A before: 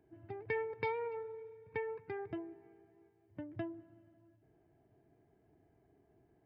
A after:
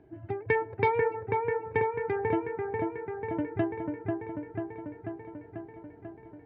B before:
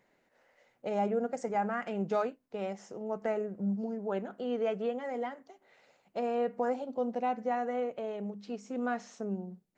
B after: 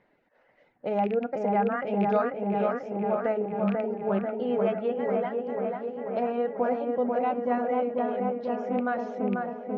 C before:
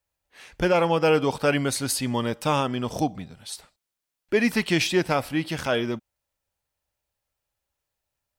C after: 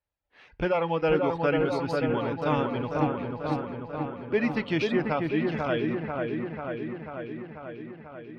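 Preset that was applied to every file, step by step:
rattling part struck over -35 dBFS, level -29 dBFS; reverb removal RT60 0.7 s; air absorption 270 m; on a send: dark delay 0.491 s, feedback 70%, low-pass 1900 Hz, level -3 dB; on the sum: FDN reverb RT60 0.36 s, low-frequency decay 1×, high-frequency decay 0.7×, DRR 17 dB; normalise peaks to -12 dBFS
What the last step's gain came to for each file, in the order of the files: +13.0, +5.5, -3.0 dB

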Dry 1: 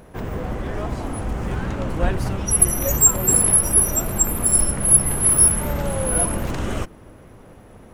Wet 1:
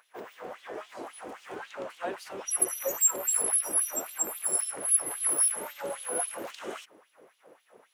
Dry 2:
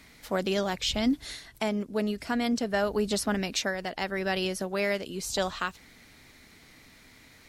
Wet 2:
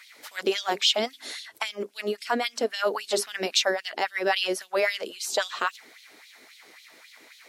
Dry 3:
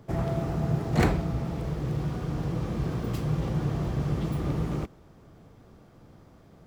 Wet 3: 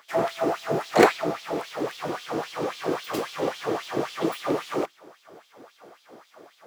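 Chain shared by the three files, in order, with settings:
notches 50/100/150/200/250/300/350/400 Hz; LFO high-pass sine 3.7 Hz 350–3600 Hz; match loudness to -27 LUFS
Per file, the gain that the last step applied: -11.0, +2.5, +8.0 dB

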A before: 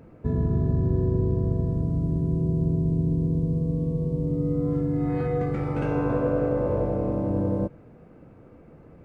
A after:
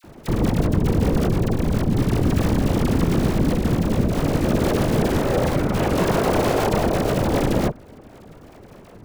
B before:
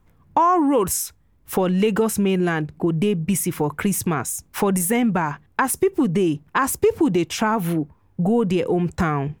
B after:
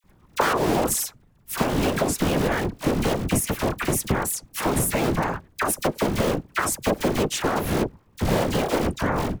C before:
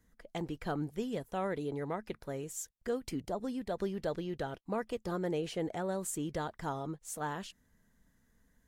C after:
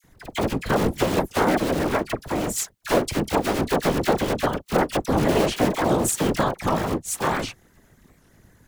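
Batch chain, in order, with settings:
cycle switcher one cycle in 3, inverted; compressor, threshold -20 dBFS; whisperiser; dispersion lows, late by 40 ms, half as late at 1400 Hz; record warp 78 rpm, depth 250 cents; normalise peaks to -6 dBFS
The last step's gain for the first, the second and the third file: +6.0, +1.0, +14.5 dB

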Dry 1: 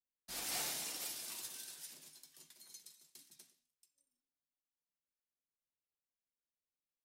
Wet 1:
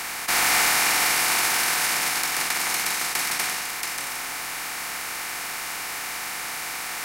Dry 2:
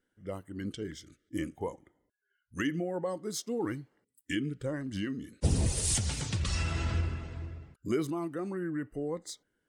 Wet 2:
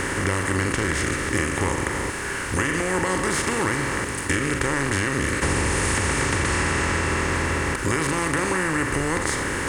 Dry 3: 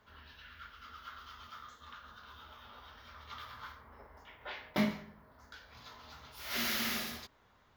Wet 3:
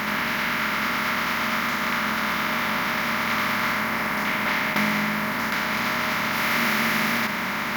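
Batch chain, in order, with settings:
per-bin compression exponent 0.2; band shelf 1500 Hz +10 dB; compressor, threshold -21 dBFS; flutter echo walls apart 7.4 m, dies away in 0.24 s; match loudness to -23 LUFS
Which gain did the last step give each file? +12.5, +2.0, +2.5 dB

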